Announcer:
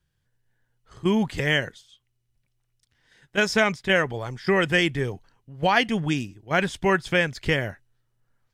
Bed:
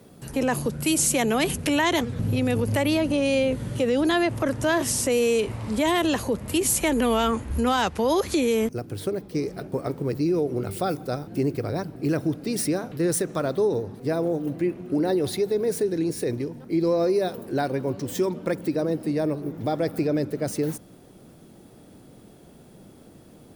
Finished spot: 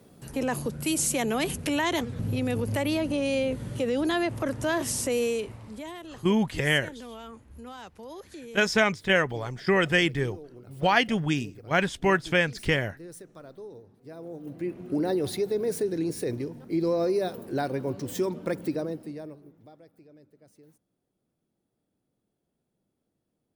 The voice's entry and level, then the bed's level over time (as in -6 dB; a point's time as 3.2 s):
5.20 s, -1.5 dB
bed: 5.23 s -4.5 dB
6.04 s -20.5 dB
14.03 s -20.5 dB
14.83 s -3.5 dB
18.71 s -3.5 dB
19.9 s -30.5 dB